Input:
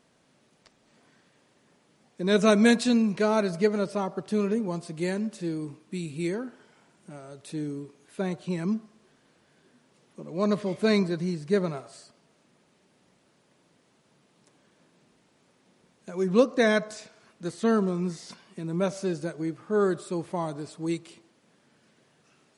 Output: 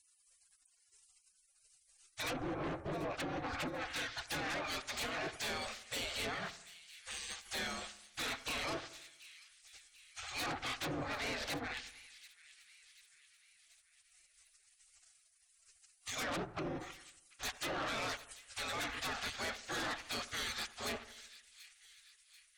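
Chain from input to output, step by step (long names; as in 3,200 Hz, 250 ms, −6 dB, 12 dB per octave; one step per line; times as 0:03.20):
low-pass filter 8,100 Hz 24 dB per octave
parametric band 3,500 Hz +5.5 dB 0.29 octaves
gate on every frequency bin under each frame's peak −30 dB weak
parametric band 970 Hz −10 dB 0.22 octaves
treble cut that deepens with the level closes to 480 Hz, closed at −41 dBFS
in parallel at −10 dB: sine wavefolder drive 16 dB, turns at −36.5 dBFS
on the sum: echo with a time of its own for lows and highs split 1,900 Hz, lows 82 ms, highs 738 ms, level −16 dB
level +7.5 dB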